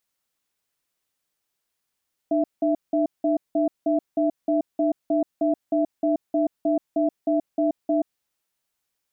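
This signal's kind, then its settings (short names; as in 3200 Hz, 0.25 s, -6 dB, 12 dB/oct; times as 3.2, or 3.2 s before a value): cadence 302 Hz, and 663 Hz, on 0.13 s, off 0.18 s, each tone -21 dBFS 5.89 s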